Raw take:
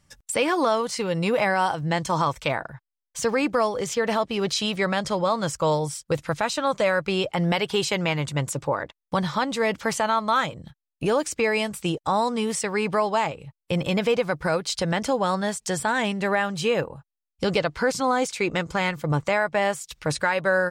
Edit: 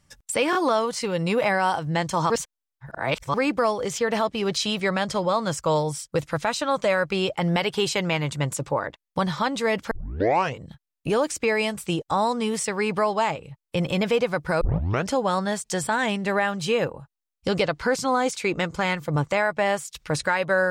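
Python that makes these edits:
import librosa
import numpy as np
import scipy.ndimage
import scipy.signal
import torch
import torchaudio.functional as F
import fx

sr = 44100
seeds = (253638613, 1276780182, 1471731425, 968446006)

y = fx.edit(x, sr, fx.stutter(start_s=0.51, slice_s=0.02, count=3),
    fx.reverse_span(start_s=2.26, length_s=1.04),
    fx.tape_start(start_s=9.87, length_s=0.7),
    fx.tape_start(start_s=14.57, length_s=0.49), tone=tone)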